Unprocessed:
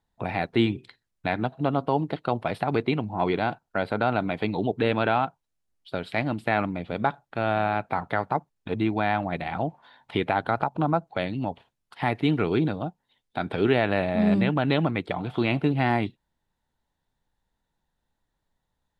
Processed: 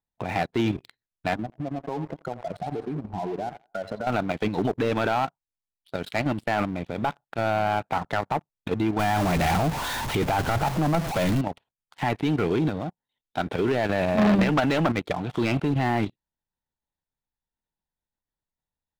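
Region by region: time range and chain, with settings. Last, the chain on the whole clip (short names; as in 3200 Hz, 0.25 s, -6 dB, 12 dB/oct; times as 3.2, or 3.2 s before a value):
1.35–4.07 spectral contrast raised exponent 2.5 + compressor 3:1, threshold -34 dBFS + thinning echo 84 ms, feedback 55%, high-pass 390 Hz, level -9 dB
8.99–11.41 zero-crossing step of -27.5 dBFS + low shelf 98 Hz +11 dB
14.17–14.92 tone controls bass +3 dB, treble +1 dB + overdrive pedal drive 18 dB, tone 2100 Hz, clips at -8 dBFS
whole clip: level quantiser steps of 9 dB; sample leveller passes 3; gain -5 dB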